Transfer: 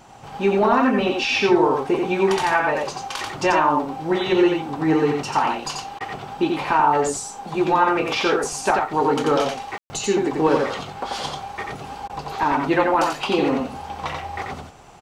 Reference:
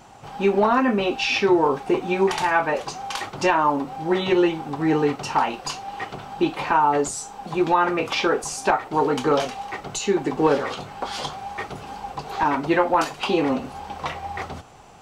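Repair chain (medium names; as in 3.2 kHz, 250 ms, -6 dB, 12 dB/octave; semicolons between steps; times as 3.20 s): room tone fill 9.78–9.90 s; interpolate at 5.99/12.08 s, 14 ms; inverse comb 88 ms -3.5 dB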